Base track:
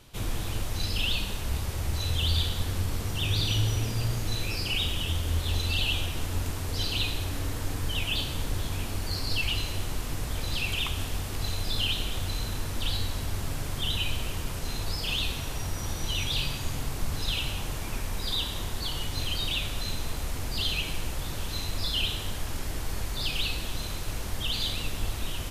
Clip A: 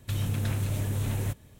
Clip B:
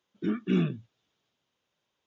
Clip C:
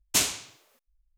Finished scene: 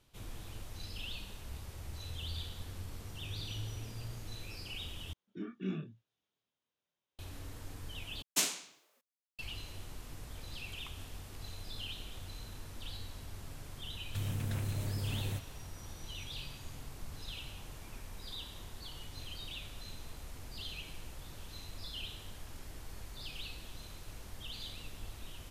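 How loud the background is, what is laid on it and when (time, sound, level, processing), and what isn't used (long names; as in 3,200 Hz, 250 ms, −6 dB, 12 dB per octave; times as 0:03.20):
base track −15 dB
0:05.13: overwrite with B −14 dB + double-tracking delay 26 ms −3.5 dB
0:08.22: overwrite with C −7.5 dB + Butterworth high-pass 150 Hz 48 dB per octave
0:14.06: mix in A −7.5 dB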